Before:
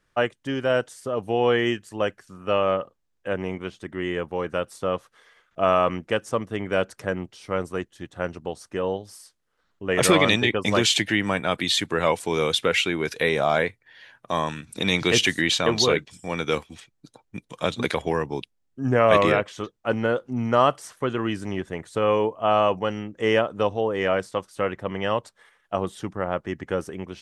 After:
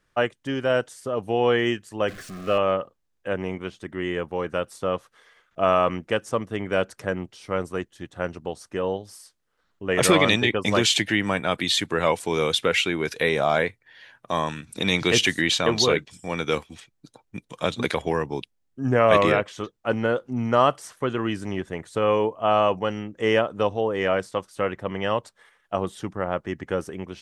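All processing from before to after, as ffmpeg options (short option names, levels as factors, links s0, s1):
-filter_complex "[0:a]asettb=1/sr,asplit=3[s0][s1][s2];[s0]atrim=end=2.084[s3];[s1]atrim=start=2.08:end=2.58,asetpts=PTS-STARTPTS,afade=t=in:d=0.004:c=qsin,afade=t=out:st=0.496:d=0.004:c=qsin,aeval=exprs='val(0)+0.5*0.0188*sgn(val(0))':c=same,asuperstop=centerf=900:order=12:qfactor=4.2,highshelf=f=7500:g=-8[s4];[s2]atrim=start=2.576[s5];[s3][s4]acrossfade=d=0.004:c1=hsin:c2=qsin[s6];[s6][s5]acrossfade=d=0.004:c1=qsin:c2=hsin"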